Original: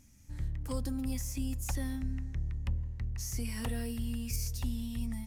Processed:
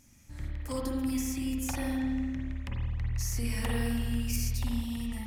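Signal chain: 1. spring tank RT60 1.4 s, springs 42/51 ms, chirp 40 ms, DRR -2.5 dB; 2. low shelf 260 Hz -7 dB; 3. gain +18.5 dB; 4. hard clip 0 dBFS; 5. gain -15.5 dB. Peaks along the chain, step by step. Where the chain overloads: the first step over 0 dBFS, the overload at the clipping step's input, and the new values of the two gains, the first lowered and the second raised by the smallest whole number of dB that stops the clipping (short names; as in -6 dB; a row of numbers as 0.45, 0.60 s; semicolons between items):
-17.5, -21.0, -2.5, -2.5, -18.0 dBFS; no overload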